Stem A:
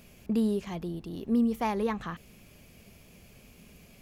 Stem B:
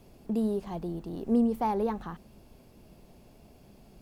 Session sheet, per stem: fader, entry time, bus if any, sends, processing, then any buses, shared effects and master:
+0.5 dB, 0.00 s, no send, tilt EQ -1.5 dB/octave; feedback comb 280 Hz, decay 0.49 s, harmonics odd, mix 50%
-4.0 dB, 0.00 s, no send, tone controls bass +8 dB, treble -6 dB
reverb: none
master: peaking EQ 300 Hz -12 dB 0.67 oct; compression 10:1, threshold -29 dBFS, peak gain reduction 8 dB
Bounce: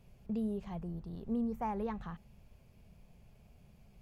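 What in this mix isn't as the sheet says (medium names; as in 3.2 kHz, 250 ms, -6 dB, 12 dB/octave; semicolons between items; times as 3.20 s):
stem A +0.5 dB -> -9.5 dB; stem B -4.0 dB -> -10.5 dB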